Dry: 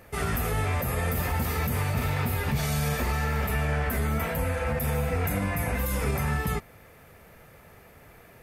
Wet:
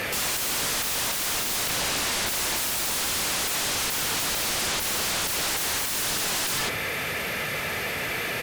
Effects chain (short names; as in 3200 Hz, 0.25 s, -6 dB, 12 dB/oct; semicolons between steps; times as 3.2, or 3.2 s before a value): weighting filter D; on a send: echo 99 ms -11 dB; on the sum: limiter -24.5 dBFS, peak gain reduction 10 dB; in parallel at -10.5 dB: hard clip -37 dBFS, distortion -7 dB; 1.69–2.29 on the sum: high shelf 3600 Hz -6.5 dB; sine folder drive 15 dB, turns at -23.5 dBFS